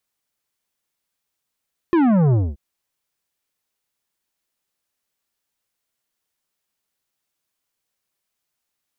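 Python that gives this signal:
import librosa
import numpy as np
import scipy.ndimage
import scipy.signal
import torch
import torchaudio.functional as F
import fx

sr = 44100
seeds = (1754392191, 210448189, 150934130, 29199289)

y = fx.sub_drop(sr, level_db=-14.0, start_hz=360.0, length_s=0.63, drive_db=11.5, fade_s=0.23, end_hz=65.0)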